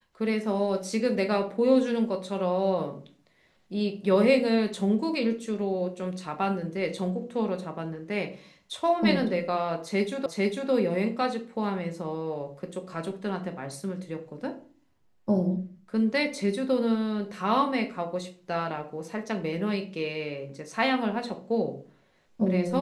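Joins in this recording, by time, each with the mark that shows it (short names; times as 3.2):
10.26 repeat of the last 0.45 s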